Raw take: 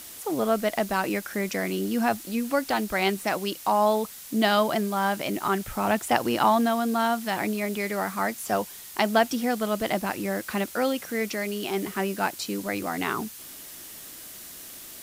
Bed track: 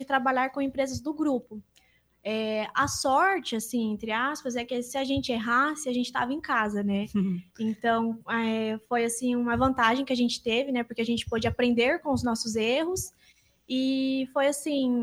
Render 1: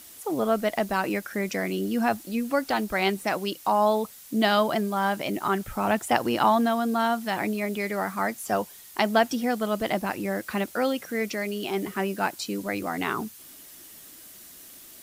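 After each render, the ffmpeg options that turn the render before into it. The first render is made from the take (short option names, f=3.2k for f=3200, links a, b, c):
-af "afftdn=nr=6:nf=-43"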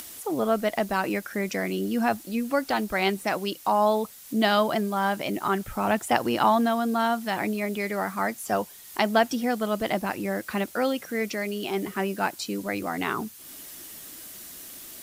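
-af "acompressor=mode=upward:threshold=-35dB:ratio=2.5"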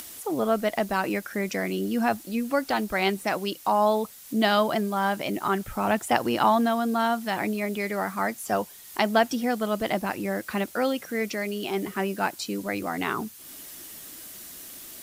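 -af anull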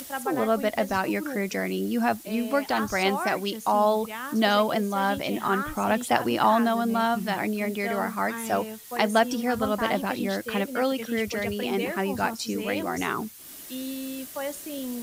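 -filter_complex "[1:a]volume=-8dB[a];[0:a][a]amix=inputs=2:normalize=0"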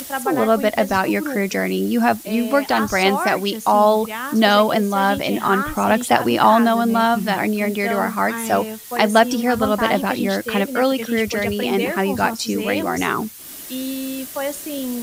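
-af "volume=7.5dB,alimiter=limit=-1dB:level=0:latency=1"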